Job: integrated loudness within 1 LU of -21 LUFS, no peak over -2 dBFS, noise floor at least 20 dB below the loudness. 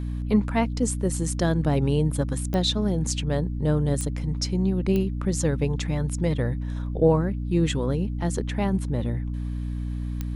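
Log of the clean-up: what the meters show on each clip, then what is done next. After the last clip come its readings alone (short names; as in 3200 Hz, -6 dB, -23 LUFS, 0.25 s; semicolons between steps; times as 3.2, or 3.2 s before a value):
clicks 4; hum 60 Hz; harmonics up to 300 Hz; hum level -27 dBFS; loudness -25.5 LUFS; peak -8.5 dBFS; loudness target -21.0 LUFS
-> de-click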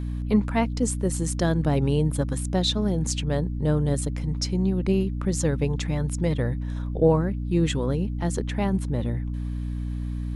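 clicks 0; hum 60 Hz; harmonics up to 300 Hz; hum level -27 dBFS
-> notches 60/120/180/240/300 Hz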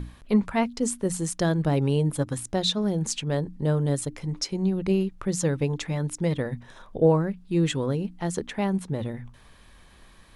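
hum none; loudness -26.5 LUFS; peak -10.0 dBFS; loudness target -21.0 LUFS
-> gain +5.5 dB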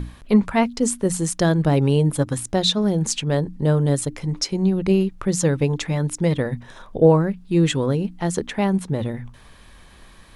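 loudness -21.0 LUFS; peak -4.5 dBFS; noise floor -47 dBFS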